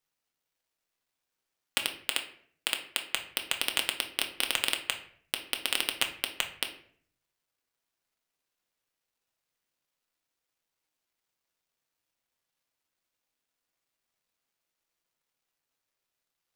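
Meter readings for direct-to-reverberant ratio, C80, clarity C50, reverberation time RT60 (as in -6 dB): 3.5 dB, 14.5 dB, 10.5 dB, 0.55 s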